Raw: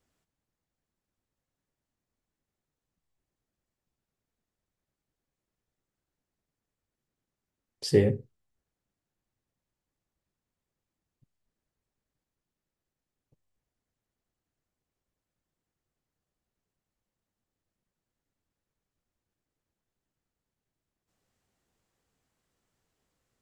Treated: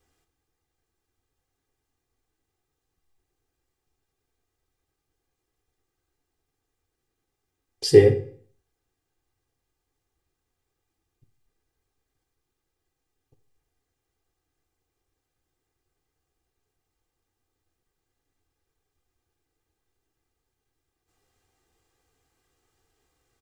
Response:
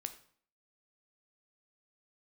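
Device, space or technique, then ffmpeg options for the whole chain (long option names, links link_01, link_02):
microphone above a desk: -filter_complex "[0:a]aecho=1:1:2.5:0.69[link_01];[1:a]atrim=start_sample=2205[link_02];[link_01][link_02]afir=irnorm=-1:irlink=0,volume=7.5dB"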